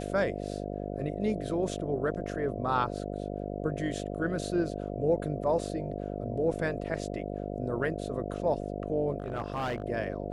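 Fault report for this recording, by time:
buzz 50 Hz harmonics 14 -36 dBFS
9.18–9.84 clipped -28 dBFS

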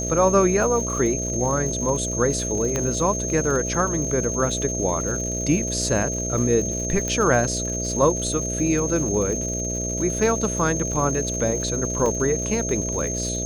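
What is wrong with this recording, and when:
buzz 60 Hz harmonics 11 -29 dBFS
crackle 180/s -31 dBFS
tone 6400 Hz -27 dBFS
2.76 pop -10 dBFS
7.08 pop -12 dBFS
12.06 gap 2.9 ms

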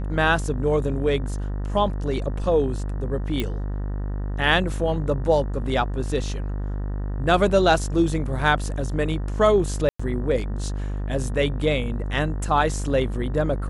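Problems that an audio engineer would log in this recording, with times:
buzz 50 Hz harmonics 38 -27 dBFS
3.4 pop -12 dBFS
9.89–9.99 gap 0.105 s

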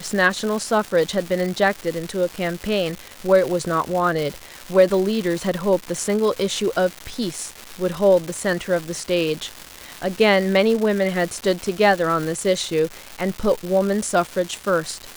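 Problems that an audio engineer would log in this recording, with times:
crackle 470/s -25 dBFS

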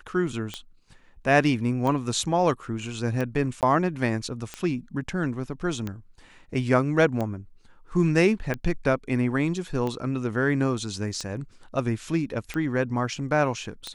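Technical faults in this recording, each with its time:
tick 45 rpm -17 dBFS
3.61–3.63 gap 18 ms

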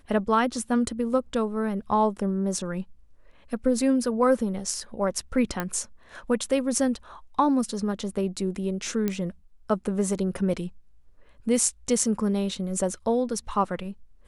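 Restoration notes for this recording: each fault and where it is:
5.6 pop -13 dBFS
9.08 pop -13 dBFS

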